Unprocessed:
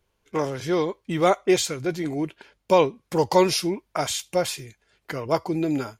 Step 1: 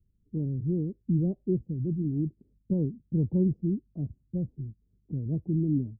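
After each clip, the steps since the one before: inverse Chebyshev low-pass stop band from 1.4 kHz, stop band 80 dB; trim +5.5 dB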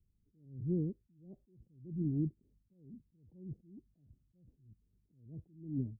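attacks held to a fixed rise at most 110 dB/s; trim -4.5 dB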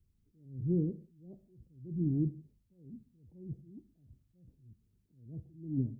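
gated-style reverb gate 210 ms falling, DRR 11 dB; trim +3 dB

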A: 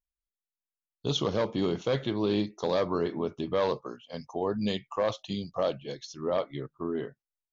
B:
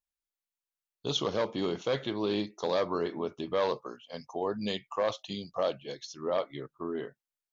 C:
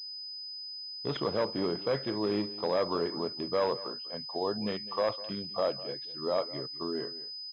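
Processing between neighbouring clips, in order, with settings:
bass shelf 230 Hz -9.5 dB
delay 202 ms -17 dB; class-D stage that switches slowly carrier 5 kHz

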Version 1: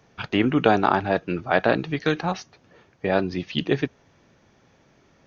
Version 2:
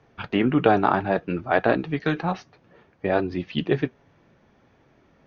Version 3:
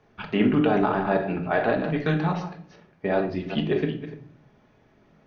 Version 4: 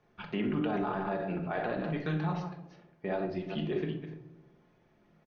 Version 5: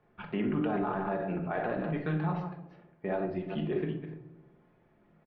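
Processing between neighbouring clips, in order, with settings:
treble shelf 4.7 kHz -11 dB; flange 0.62 Hz, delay 2.3 ms, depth 5 ms, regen -63%; distance through air 71 m; trim +4.5 dB
chunks repeated in reverse 197 ms, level -10.5 dB; peak limiter -10 dBFS, peak gain reduction 6.5 dB; simulated room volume 630 m³, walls furnished, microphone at 1.4 m; trim -2.5 dB
comb 5.7 ms, depth 34%; peak limiter -15.5 dBFS, peak gain reduction 7 dB; tape echo 67 ms, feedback 82%, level -11 dB, low-pass 1.1 kHz; trim -8 dB
low-pass 2.4 kHz 12 dB/octave; trim +1 dB

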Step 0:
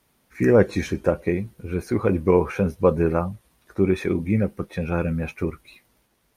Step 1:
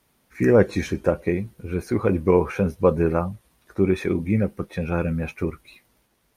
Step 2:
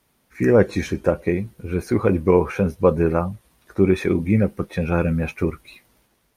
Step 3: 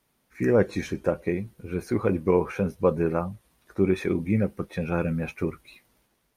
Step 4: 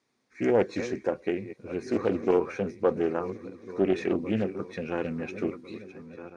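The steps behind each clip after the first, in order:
no audible change
level rider gain up to 4 dB
peaking EQ 78 Hz -8.5 dB 0.29 oct; trim -5.5 dB
backward echo that repeats 700 ms, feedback 53%, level -13 dB; cabinet simulation 160–6900 Hz, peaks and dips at 170 Hz -9 dB, 610 Hz -6 dB, 890 Hz -5 dB, 1.4 kHz -5 dB, 3 kHz -9 dB; loudspeaker Doppler distortion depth 0.32 ms

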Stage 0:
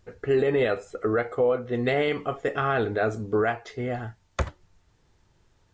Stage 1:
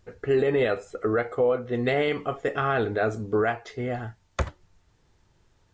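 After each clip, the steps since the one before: no audible change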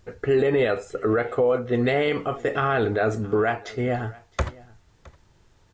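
peak limiter -18 dBFS, peak gain reduction 4.5 dB; delay 665 ms -23 dB; trim +5 dB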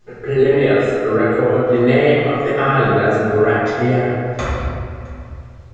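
in parallel at +3 dB: level held to a coarse grid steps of 12 dB; on the sum: reverberation RT60 2.3 s, pre-delay 5 ms, DRR -12.5 dB; trim -10.5 dB

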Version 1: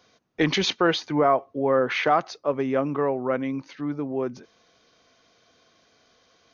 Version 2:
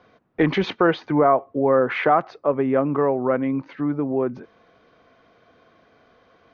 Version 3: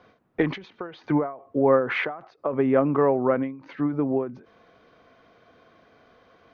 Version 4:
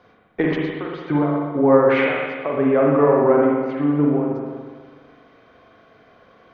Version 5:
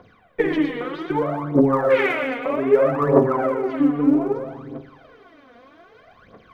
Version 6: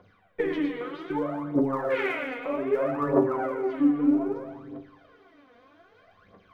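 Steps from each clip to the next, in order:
low-pass 1.8 kHz 12 dB/octave; in parallel at 0 dB: compression, threshold -30 dBFS, peak gain reduction 14 dB; on the sum: trim +1.5 dB
endings held to a fixed fall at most 120 dB/s
spring tank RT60 1.6 s, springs 41/59 ms, chirp 70 ms, DRR -2.5 dB; trim +1 dB
in parallel at -1.5 dB: compression, threshold -23 dBFS, peak gain reduction 14 dB; on the sum: phaser 0.63 Hz, delay 4.3 ms, feedback 75%; trim -7 dB
feedback comb 96 Hz, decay 0.19 s, harmonics all, mix 80%; trim -1.5 dB

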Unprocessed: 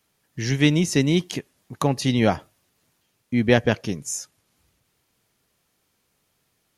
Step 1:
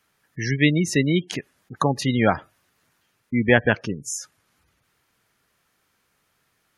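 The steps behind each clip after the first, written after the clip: spectral gate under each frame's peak -25 dB strong; peaking EQ 1.5 kHz +8.5 dB 1.3 oct; trim -1 dB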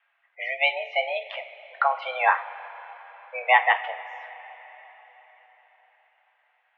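two-slope reverb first 0.31 s, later 4.6 s, from -19 dB, DRR 5 dB; mistuned SSB +260 Hz 410–2700 Hz

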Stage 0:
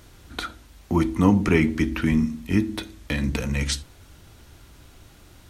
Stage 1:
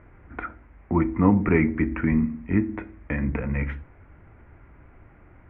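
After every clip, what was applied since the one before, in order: elliptic low-pass 2.2 kHz, stop band 50 dB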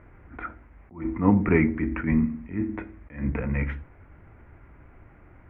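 attacks held to a fixed rise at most 160 dB/s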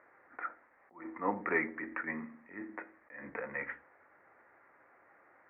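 cabinet simulation 480–2300 Hz, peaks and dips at 530 Hz +6 dB, 810 Hz +4 dB, 1.2 kHz +5 dB, 1.8 kHz +9 dB; trim -8 dB

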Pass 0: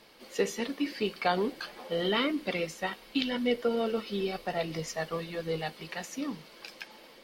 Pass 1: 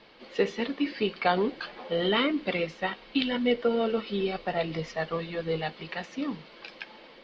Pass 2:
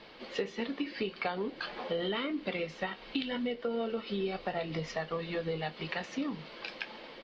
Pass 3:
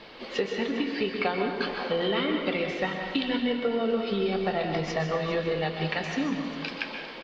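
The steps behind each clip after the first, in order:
low-pass 4.2 kHz 24 dB/octave; trim +3 dB
compression 6:1, threshold -34 dBFS, peak gain reduction 14.5 dB; doubling 26 ms -13 dB; trim +2.5 dB
delay 403 ms -15 dB; plate-style reverb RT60 1.2 s, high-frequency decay 0.65×, pre-delay 115 ms, DRR 3.5 dB; trim +5.5 dB

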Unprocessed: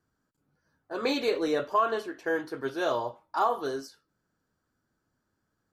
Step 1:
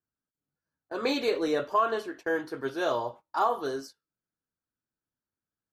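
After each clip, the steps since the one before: gate -45 dBFS, range -17 dB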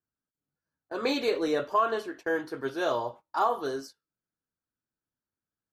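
no audible change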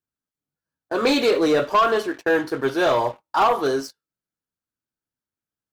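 waveshaping leveller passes 2; trim +3.5 dB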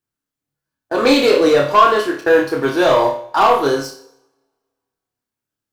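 on a send: flutter echo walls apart 4.9 m, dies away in 0.34 s; on the sum: two-slope reverb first 0.76 s, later 2 s, from -28 dB, DRR 12 dB; trim +4 dB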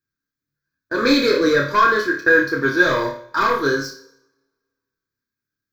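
static phaser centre 2.8 kHz, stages 6; small resonant body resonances 1.6/2.5 kHz, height 12 dB, ringing for 45 ms

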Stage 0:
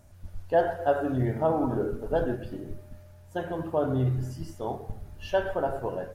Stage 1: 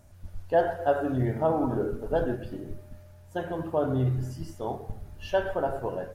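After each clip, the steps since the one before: no audible change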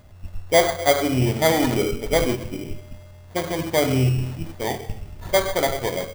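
sample-rate reducer 2.7 kHz, jitter 0%; trim +6.5 dB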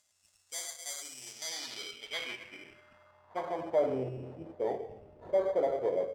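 saturation -19 dBFS, distortion -9 dB; band-pass sweep 7.3 kHz -> 500 Hz, 1.20–4.00 s

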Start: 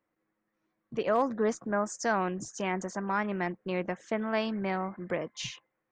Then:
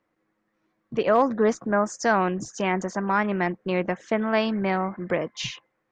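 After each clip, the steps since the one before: low-pass 6 kHz 12 dB/octave; trim +7 dB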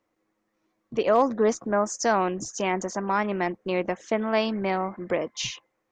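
fifteen-band graphic EQ 160 Hz -7 dB, 1.6 kHz -5 dB, 6.3 kHz +5 dB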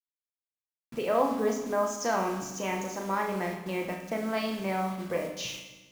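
bit crusher 7-bit; flutter echo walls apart 6.2 m, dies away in 0.32 s; on a send at -3 dB: reverberation RT60 1.2 s, pre-delay 3 ms; on the sum: trim -7.5 dB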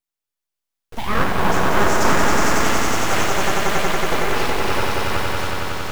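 fade out at the end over 1.48 s; echo with a slow build-up 92 ms, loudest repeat 5, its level -3.5 dB; full-wave rectifier; trim +8.5 dB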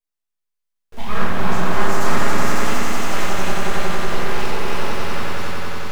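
self-modulated delay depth 0.17 ms; simulated room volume 210 m³, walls mixed, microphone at 1.3 m; trim -7.5 dB

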